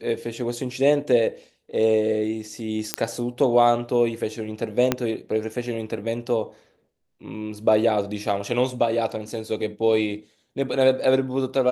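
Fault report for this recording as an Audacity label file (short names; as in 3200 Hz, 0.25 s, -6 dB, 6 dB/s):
2.940000	2.940000	pop -3 dBFS
4.920000	4.920000	pop -5 dBFS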